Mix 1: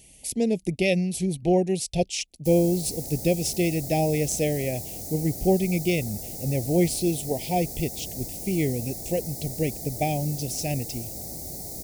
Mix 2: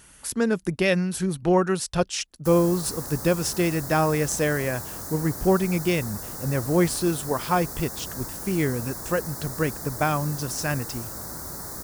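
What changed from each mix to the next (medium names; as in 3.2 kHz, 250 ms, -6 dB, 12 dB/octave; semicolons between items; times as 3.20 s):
master: remove elliptic band-stop 750–2200 Hz, stop band 80 dB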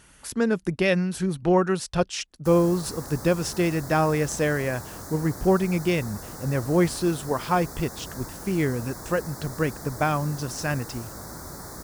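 master: add treble shelf 7.8 kHz -9 dB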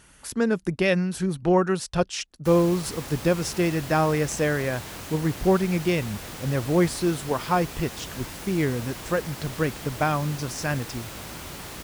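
background: remove Butterworth band-stop 2.8 kHz, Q 0.87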